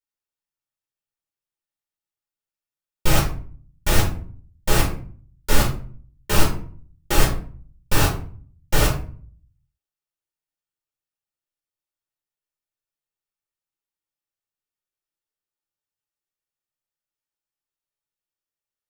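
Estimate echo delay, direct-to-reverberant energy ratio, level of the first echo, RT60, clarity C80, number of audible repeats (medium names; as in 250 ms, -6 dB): no echo, -4.0 dB, no echo, 0.45 s, 12.5 dB, no echo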